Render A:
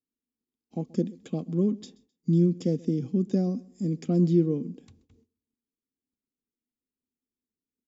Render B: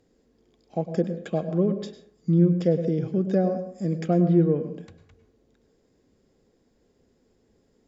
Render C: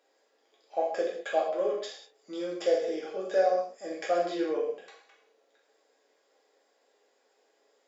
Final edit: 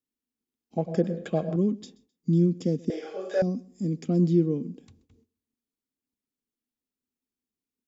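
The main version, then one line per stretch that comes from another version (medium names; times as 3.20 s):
A
0.78–1.56 s: from B
2.90–3.42 s: from C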